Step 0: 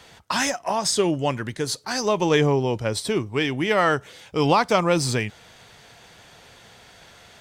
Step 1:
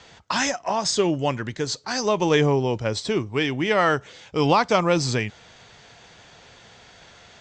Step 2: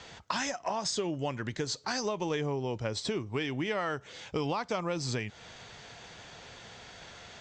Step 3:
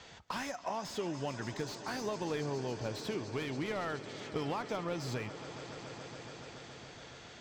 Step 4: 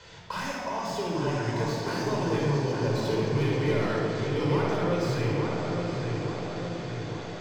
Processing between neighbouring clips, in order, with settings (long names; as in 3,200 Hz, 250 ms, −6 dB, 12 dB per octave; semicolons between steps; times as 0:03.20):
Butterworth low-pass 7,700 Hz 72 dB per octave
downward compressor 6 to 1, threshold −30 dBFS, peak gain reduction 15 dB
echo that builds up and dies away 141 ms, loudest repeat 5, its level −17.5 dB; slew-rate limiting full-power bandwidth 52 Hz; level −4.5 dB
on a send: feedback echo with a low-pass in the loop 864 ms, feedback 58%, low-pass 2,600 Hz, level −4.5 dB; on the sum: rectangular room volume 3,200 cubic metres, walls mixed, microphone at 4.9 metres